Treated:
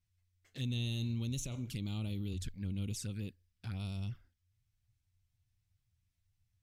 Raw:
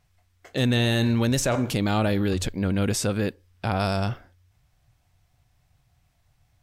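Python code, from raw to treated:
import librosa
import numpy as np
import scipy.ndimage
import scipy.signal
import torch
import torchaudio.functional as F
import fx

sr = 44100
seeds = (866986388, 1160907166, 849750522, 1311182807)

y = fx.env_flanger(x, sr, rest_ms=10.7, full_db=-20.0)
y = fx.tone_stack(y, sr, knobs='6-0-2')
y = y * librosa.db_to_amplitude(2.5)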